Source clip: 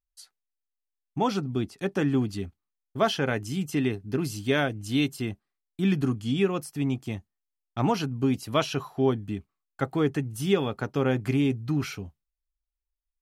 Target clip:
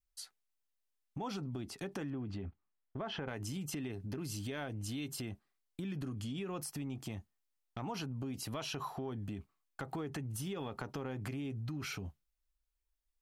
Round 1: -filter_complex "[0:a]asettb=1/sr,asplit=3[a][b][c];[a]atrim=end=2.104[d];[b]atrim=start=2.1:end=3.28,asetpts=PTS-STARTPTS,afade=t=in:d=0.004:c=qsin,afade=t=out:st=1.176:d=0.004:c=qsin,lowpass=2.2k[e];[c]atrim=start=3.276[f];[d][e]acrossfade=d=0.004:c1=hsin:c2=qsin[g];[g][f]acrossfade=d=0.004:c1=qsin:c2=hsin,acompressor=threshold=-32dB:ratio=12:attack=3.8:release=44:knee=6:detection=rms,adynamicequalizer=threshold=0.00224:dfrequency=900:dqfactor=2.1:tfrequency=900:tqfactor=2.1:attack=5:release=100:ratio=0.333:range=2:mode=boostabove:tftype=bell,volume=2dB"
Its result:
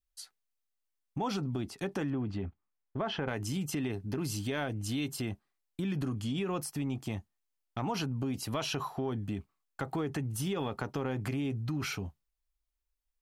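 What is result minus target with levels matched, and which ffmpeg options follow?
compressor: peak gain reduction -7 dB
-filter_complex "[0:a]asettb=1/sr,asplit=3[a][b][c];[a]atrim=end=2.104[d];[b]atrim=start=2.1:end=3.28,asetpts=PTS-STARTPTS,afade=t=in:d=0.004:c=qsin,afade=t=out:st=1.176:d=0.004:c=qsin,lowpass=2.2k[e];[c]atrim=start=3.276[f];[d][e]acrossfade=d=0.004:c1=hsin:c2=qsin[g];[g][f]acrossfade=d=0.004:c1=qsin:c2=hsin,acompressor=threshold=-39.5dB:ratio=12:attack=3.8:release=44:knee=6:detection=rms,adynamicequalizer=threshold=0.00224:dfrequency=900:dqfactor=2.1:tfrequency=900:tqfactor=2.1:attack=5:release=100:ratio=0.333:range=2:mode=boostabove:tftype=bell,volume=2dB"

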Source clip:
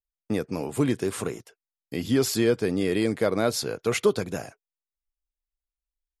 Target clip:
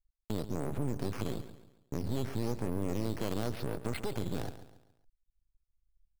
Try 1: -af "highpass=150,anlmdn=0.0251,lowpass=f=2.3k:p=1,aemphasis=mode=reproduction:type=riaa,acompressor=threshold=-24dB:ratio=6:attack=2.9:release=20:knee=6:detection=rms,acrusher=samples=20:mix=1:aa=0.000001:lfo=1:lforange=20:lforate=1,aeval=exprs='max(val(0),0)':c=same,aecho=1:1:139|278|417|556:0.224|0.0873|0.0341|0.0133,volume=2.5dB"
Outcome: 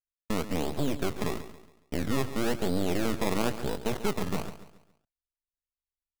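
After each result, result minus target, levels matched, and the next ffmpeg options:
compressor: peak gain reduction -8 dB; decimation with a swept rate: distortion +8 dB; 125 Hz band -5.0 dB
-af "highpass=150,anlmdn=0.0251,lowpass=f=2.3k:p=1,aemphasis=mode=reproduction:type=riaa,acompressor=threshold=-32.5dB:ratio=6:attack=2.9:release=20:knee=6:detection=rms,acrusher=samples=20:mix=1:aa=0.000001:lfo=1:lforange=20:lforate=1,aeval=exprs='max(val(0),0)':c=same,aecho=1:1:139|278|417|556:0.224|0.0873|0.0341|0.0133,volume=2.5dB"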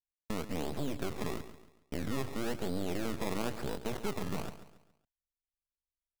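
decimation with a swept rate: distortion +9 dB; 125 Hz band -4.5 dB
-af "highpass=150,anlmdn=0.0251,lowpass=f=2.3k:p=1,aemphasis=mode=reproduction:type=riaa,acompressor=threshold=-32.5dB:ratio=6:attack=2.9:release=20:knee=6:detection=rms,acrusher=samples=8:mix=1:aa=0.000001:lfo=1:lforange=8:lforate=1,aeval=exprs='max(val(0),0)':c=same,aecho=1:1:139|278|417|556:0.224|0.0873|0.0341|0.0133,volume=2.5dB"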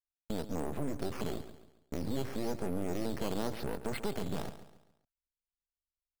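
125 Hz band -4.0 dB
-af "anlmdn=0.0251,lowpass=f=2.3k:p=1,aemphasis=mode=reproduction:type=riaa,acompressor=threshold=-32.5dB:ratio=6:attack=2.9:release=20:knee=6:detection=rms,acrusher=samples=8:mix=1:aa=0.000001:lfo=1:lforange=8:lforate=1,aeval=exprs='max(val(0),0)':c=same,aecho=1:1:139|278|417|556:0.224|0.0873|0.0341|0.0133,volume=2.5dB"

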